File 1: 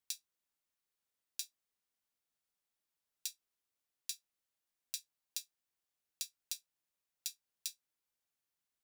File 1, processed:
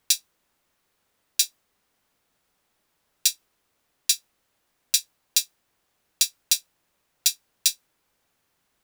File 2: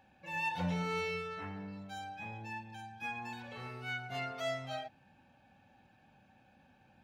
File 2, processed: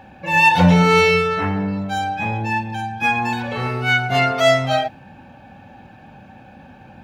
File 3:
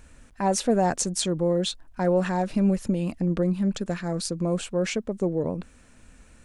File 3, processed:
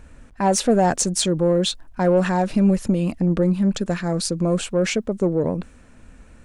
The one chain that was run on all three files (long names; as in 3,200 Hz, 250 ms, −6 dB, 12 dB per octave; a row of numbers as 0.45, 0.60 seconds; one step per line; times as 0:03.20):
in parallel at −6 dB: soft clipping −21.5 dBFS
on the sum: one half of a high-frequency compander decoder only
normalise the peak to −3 dBFS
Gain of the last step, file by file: +20.0, +19.5, +2.5 decibels